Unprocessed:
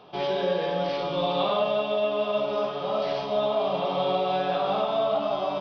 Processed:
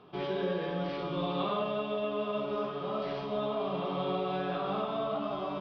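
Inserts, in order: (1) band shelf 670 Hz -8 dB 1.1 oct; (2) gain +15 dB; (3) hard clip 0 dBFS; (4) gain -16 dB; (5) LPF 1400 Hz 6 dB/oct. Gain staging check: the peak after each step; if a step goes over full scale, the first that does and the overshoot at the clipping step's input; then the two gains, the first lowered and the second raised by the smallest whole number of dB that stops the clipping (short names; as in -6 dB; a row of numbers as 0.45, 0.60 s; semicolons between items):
-17.0, -2.0, -2.0, -18.0, -20.5 dBFS; no overload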